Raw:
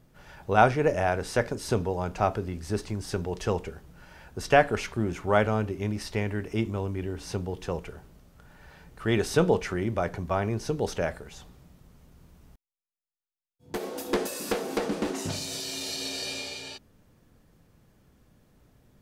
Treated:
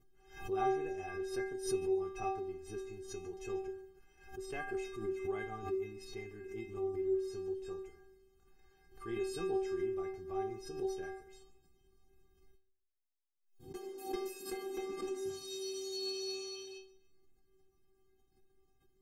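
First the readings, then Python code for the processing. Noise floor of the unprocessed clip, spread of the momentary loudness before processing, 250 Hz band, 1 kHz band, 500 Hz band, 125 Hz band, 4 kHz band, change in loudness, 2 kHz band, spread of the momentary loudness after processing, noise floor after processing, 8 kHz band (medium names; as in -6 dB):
under -85 dBFS, 13 LU, -11.0 dB, -13.5 dB, -9.0 dB, -22.0 dB, -10.5 dB, -11.0 dB, -16.5 dB, 12 LU, -74 dBFS, -11.5 dB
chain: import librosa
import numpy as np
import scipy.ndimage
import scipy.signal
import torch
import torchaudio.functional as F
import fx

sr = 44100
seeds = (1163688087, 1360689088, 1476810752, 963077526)

y = fx.low_shelf_res(x, sr, hz=430.0, db=6.5, q=1.5)
y = fx.stiff_resonator(y, sr, f0_hz=380.0, decay_s=0.54, stiffness=0.008)
y = fx.echo_feedback(y, sr, ms=142, feedback_pct=35, wet_db=-18.0)
y = fx.pre_swell(y, sr, db_per_s=110.0)
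y = y * librosa.db_to_amplitude(3.0)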